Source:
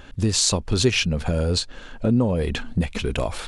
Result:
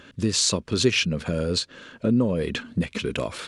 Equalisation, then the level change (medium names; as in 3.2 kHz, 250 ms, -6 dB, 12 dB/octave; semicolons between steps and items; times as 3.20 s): high-pass 140 Hz 12 dB/octave; peaking EQ 790 Hz -12 dB 0.39 oct; treble shelf 9.7 kHz -7.5 dB; 0.0 dB